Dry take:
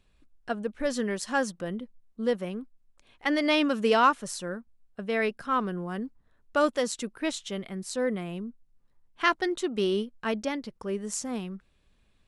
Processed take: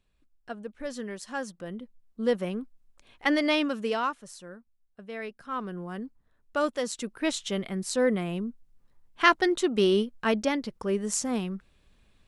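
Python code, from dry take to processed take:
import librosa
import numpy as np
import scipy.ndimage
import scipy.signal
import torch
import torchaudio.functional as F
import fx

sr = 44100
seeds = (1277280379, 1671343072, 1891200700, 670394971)

y = fx.gain(x, sr, db=fx.line((1.42, -7.0), (2.42, 2.5), (3.27, 2.5), (4.2, -10.0), (5.32, -10.0), (5.8, -3.0), (6.78, -3.0), (7.46, 4.0)))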